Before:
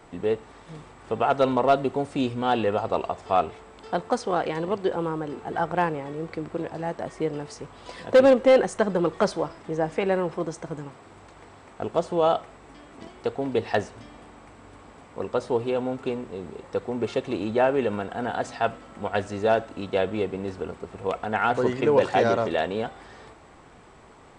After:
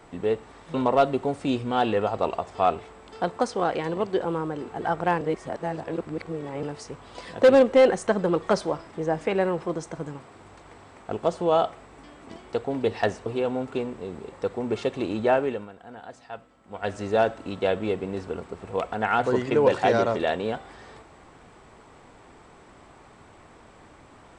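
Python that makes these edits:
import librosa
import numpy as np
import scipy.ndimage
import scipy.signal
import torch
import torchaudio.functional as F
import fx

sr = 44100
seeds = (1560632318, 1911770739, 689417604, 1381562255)

y = fx.edit(x, sr, fx.cut(start_s=0.74, length_s=0.71),
    fx.reverse_span(start_s=5.92, length_s=1.42),
    fx.cut(start_s=13.97, length_s=1.6),
    fx.fade_down_up(start_s=17.65, length_s=1.66, db=-14.0, fade_s=0.34), tone=tone)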